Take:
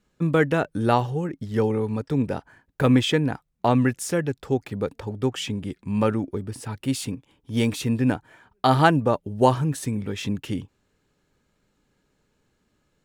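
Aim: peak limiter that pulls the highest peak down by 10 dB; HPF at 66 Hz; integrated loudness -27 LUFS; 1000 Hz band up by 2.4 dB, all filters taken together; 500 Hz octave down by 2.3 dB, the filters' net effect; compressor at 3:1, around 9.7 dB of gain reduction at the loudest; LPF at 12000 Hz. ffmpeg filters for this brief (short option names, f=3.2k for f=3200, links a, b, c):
-af "highpass=66,lowpass=12k,equalizer=f=500:t=o:g=-4,equalizer=f=1k:t=o:g=4.5,acompressor=threshold=-25dB:ratio=3,volume=5dB,alimiter=limit=-15dB:level=0:latency=1"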